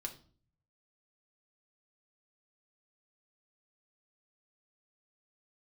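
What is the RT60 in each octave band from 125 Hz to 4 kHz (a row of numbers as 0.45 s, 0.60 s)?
1.1 s, 0.65 s, 0.50 s, 0.40 s, 0.35 s, 0.35 s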